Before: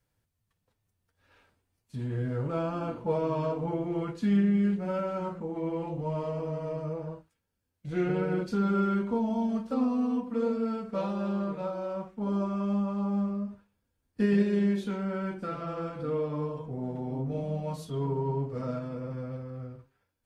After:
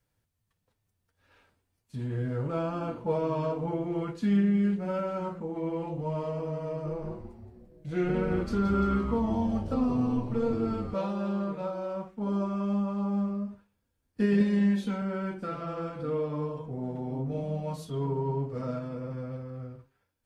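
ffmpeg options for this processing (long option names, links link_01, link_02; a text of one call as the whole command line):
ffmpeg -i in.wav -filter_complex "[0:a]asettb=1/sr,asplit=3[link_01][link_02][link_03];[link_01]atrim=end=6.684[link_04];[link_02]atrim=start=6.68:end=10.94,asetpts=PTS-STARTPTS,afade=type=in:duration=0.004:curve=qsin,afade=type=out:start_time=4.256:duration=0.004:curve=qsin,asplit=9[link_05][link_06][link_07][link_08][link_09][link_10][link_11][link_12][link_13];[link_06]adelay=172,afreqshift=-130,volume=-9dB[link_14];[link_07]adelay=344,afreqshift=-260,volume=-13.2dB[link_15];[link_08]adelay=516,afreqshift=-390,volume=-17.3dB[link_16];[link_09]adelay=688,afreqshift=-520,volume=-21.5dB[link_17];[link_10]adelay=860,afreqshift=-650,volume=-25.6dB[link_18];[link_11]adelay=1032,afreqshift=-780,volume=-29.8dB[link_19];[link_12]adelay=1204,afreqshift=-910,volume=-33.9dB[link_20];[link_13]adelay=1376,afreqshift=-1040,volume=-38.1dB[link_21];[link_05][link_14][link_15][link_16][link_17][link_18][link_19][link_20][link_21]amix=inputs=9:normalize=0,atrim=end_sample=187866[link_22];[link_03]atrim=start=10.936[link_23];[link_04][link_22]acrossfade=duration=0.004:curve1=hsin:curve2=qsin[link_24];[link_24][link_23]acrossfade=duration=0.004:curve1=qsin:curve2=hsin,asettb=1/sr,asplit=3[link_25][link_26][link_27];[link_25]atrim=end=14.404[link_28];[link_26]atrim=start=14.4:end=15.02,asetpts=PTS-STARTPTS,afade=type=in:duration=0.004:curve=qsin,afade=type=out:start_time=0.616:duration=0.004:curve=qsin,aecho=1:1:3.9:0.65,atrim=end_sample=27342[link_29];[link_27]atrim=start=15.016[link_30];[link_28][link_29]acrossfade=duration=0.004:curve1=hsin:curve2=qsin[link_31];[link_31][link_30]acrossfade=duration=0.004:curve1=qsin:curve2=hsin" out.wav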